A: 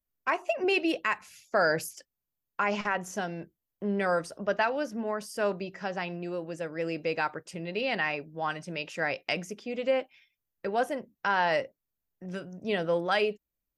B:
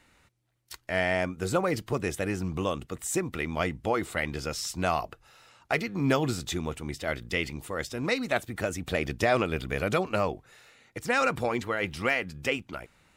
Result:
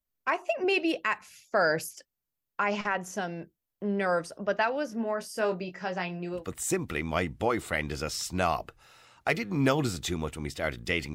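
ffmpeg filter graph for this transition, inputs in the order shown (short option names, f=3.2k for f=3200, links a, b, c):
-filter_complex "[0:a]asettb=1/sr,asplit=3[a][b][c];[a]atrim=end=4.874[d];[b]atrim=start=4.87:end=6.46,asetpts=PTS-STARTPTS,afade=t=in:d=0.004:c=qsin,afade=t=out:st=1.586:d=0.004:c=qsin,asplit=2[e][f];[f]adelay=22,volume=-6.5dB[g];[e][g]amix=inputs=2:normalize=0,atrim=end_sample=70119[h];[c]atrim=start=6.456[i];[d][h]acrossfade=d=0.004:c1=hsin:c2=qsin[j];[j][i]acrossfade=d=0.004:c1=qsin:c2=hsin,apad=whole_dur=11.14,atrim=end=11.14,atrim=end=6.46,asetpts=PTS-STARTPTS[k];[1:a]atrim=start=2.76:end=7.58,asetpts=PTS-STARTPTS[l];[k][l]acrossfade=d=0.14:c1=tri:c2=tri"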